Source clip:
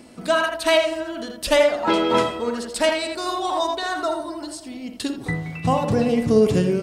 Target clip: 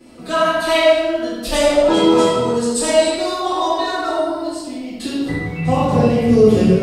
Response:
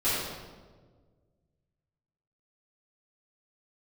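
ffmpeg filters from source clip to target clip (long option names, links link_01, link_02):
-filter_complex "[0:a]asettb=1/sr,asplit=3[link_01][link_02][link_03];[link_01]atrim=end=1.534[link_04];[link_02]atrim=start=1.53:end=3.05,asetpts=PTS-STARTPTS,afade=type=in:duration=0.004:curve=qsin,afade=type=out:start_time=1.516:duration=0.004:curve=qsin,equalizer=frequency=125:width_type=o:width=1:gain=5,equalizer=frequency=2000:width_type=o:width=1:gain=-6,equalizer=frequency=8000:width_type=o:width=1:gain=11[link_05];[link_03]atrim=start=3.046[link_06];[link_04][link_05]acrossfade=duration=0.004:curve1=hsin:curve2=qsin[link_07];[link_07][link_06]acrossfade=duration=0.004:curve1=qsin:curve2=hsin[link_08];[1:a]atrim=start_sample=2205,afade=type=out:start_time=0.45:duration=0.01,atrim=end_sample=20286[link_09];[link_08][link_09]afir=irnorm=-1:irlink=0,volume=-7.5dB"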